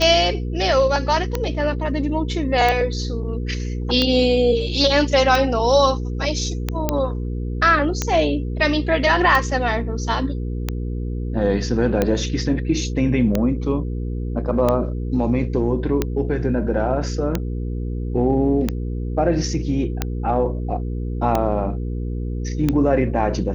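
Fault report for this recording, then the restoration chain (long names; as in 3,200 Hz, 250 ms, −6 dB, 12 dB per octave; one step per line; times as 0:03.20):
mains hum 60 Hz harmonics 8 −25 dBFS
scratch tick 45 rpm −6 dBFS
0:06.89: click −5 dBFS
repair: click removal
hum removal 60 Hz, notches 8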